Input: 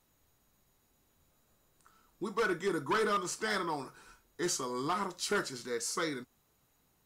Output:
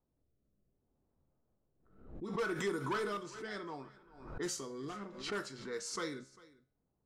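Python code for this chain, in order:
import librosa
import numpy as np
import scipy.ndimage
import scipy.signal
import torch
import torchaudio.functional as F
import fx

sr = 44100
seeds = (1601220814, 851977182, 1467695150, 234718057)

y = fx.rotary(x, sr, hz=0.65)
y = fx.env_lowpass(y, sr, base_hz=670.0, full_db=-31.0)
y = fx.comb_fb(y, sr, f0_hz=67.0, decay_s=0.5, harmonics='all', damping=0.0, mix_pct=50)
y = y + 10.0 ** (-21.5 / 20.0) * np.pad(y, (int(398 * sr / 1000.0), 0))[:len(y)]
y = fx.pre_swell(y, sr, db_per_s=78.0)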